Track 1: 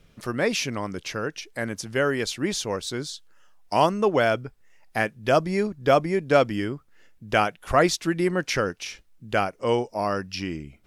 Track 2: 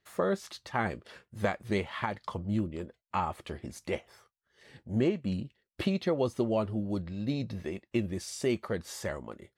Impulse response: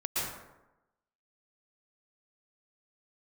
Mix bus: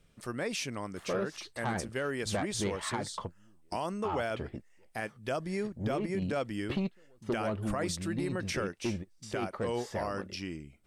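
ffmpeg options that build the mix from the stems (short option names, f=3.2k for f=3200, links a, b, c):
-filter_complex "[0:a]equalizer=f=8.5k:w=4.2:g=10.5,volume=-8.5dB,asplit=2[a][b];[1:a]aemphasis=mode=reproduction:type=50kf,asoftclip=type=tanh:threshold=-24.5dB,adelay=900,volume=0dB[c];[b]apad=whole_len=462111[d];[c][d]sidechaingate=range=-33dB:threshold=-54dB:ratio=16:detection=peak[e];[a][e]amix=inputs=2:normalize=0,alimiter=limit=-24dB:level=0:latency=1:release=59"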